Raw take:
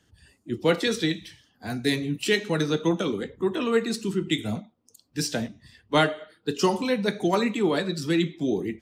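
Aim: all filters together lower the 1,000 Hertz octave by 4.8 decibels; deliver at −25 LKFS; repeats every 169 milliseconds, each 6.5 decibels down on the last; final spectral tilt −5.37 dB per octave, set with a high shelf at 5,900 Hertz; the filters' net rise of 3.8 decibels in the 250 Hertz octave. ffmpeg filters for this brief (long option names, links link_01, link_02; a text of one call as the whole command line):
ffmpeg -i in.wav -af "equalizer=frequency=250:width_type=o:gain=5.5,equalizer=frequency=1000:width_type=o:gain=-6.5,highshelf=frequency=5900:gain=-7,aecho=1:1:169|338|507|676|845|1014:0.473|0.222|0.105|0.0491|0.0231|0.0109,volume=-1.5dB" out.wav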